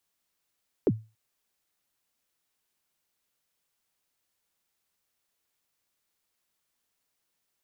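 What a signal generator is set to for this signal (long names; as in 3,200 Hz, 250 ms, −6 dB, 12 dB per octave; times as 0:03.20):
synth kick length 0.28 s, from 490 Hz, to 110 Hz, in 45 ms, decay 0.29 s, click off, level −15.5 dB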